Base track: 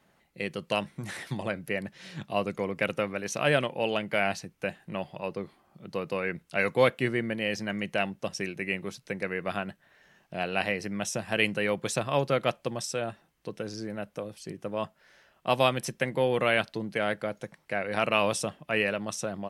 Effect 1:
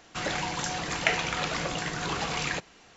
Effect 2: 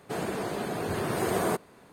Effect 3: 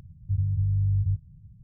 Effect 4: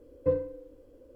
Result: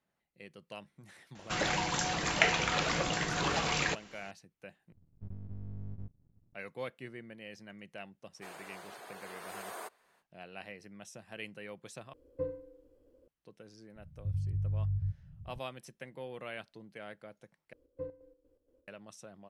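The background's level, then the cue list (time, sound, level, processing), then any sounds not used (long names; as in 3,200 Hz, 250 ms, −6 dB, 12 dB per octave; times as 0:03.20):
base track −18 dB
0:01.35: mix in 1 −1 dB
0:04.92: overwrite with 3 −14.5 dB + half-wave rectification
0:08.32: mix in 2 −11.5 dB, fades 0.05 s + high-pass filter 740 Hz
0:12.13: overwrite with 4 −10 dB
0:13.96: mix in 3 −8.5 dB + camcorder AGC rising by 26 dB per second
0:17.73: overwrite with 4 −15 dB + square-wave tremolo 4.2 Hz, depth 60%, duty 55%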